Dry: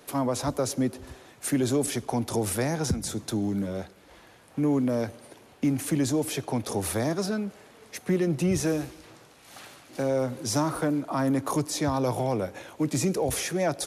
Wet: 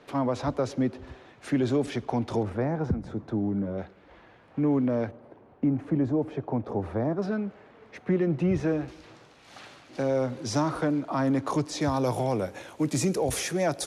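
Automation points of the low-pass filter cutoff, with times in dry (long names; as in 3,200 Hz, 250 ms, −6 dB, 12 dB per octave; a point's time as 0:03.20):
3,300 Hz
from 0:02.43 1,300 Hz
from 0:03.78 2,500 Hz
from 0:05.11 1,100 Hz
from 0:07.22 2,200 Hz
from 0:08.88 5,200 Hz
from 0:11.81 11,000 Hz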